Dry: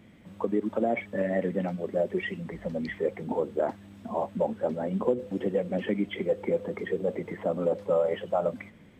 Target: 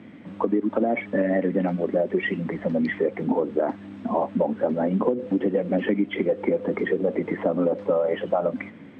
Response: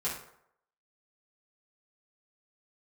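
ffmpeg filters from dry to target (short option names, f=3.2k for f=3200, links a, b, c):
-af "highpass=120,tiltshelf=f=1.4k:g=3.5,crystalizer=i=9.5:c=0,lowpass=1.9k,equalizer=f=280:t=o:w=0.48:g=8.5,acompressor=threshold=-22dB:ratio=6,volume=3.5dB"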